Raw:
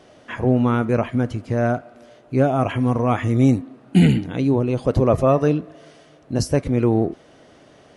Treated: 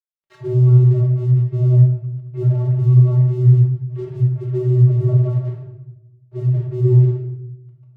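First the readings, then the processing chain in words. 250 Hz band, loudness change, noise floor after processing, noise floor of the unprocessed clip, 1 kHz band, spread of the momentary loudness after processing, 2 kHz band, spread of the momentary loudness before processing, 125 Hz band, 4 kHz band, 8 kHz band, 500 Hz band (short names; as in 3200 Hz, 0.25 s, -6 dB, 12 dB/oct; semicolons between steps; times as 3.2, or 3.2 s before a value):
n/a, +4.5 dB, -53 dBFS, -50 dBFS, under -20 dB, 15 LU, under -20 dB, 8 LU, +9.5 dB, under -15 dB, under -20 dB, -6.0 dB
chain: low shelf 490 Hz +8.5 dB; treble ducked by the level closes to 820 Hz, closed at -12.5 dBFS; dynamic EQ 1900 Hz, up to +6 dB, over -38 dBFS, Q 1.1; in parallel at +0.5 dB: compressor, threshold -24 dBFS, peak gain reduction 19.5 dB; on the sum: flange 0.93 Hz, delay 0.8 ms, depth 9.3 ms, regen +72%; vocoder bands 32, square 125 Hz; crossover distortion -44 dBFS; shoebox room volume 280 m³, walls mixed, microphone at 1.1 m; gain -2 dB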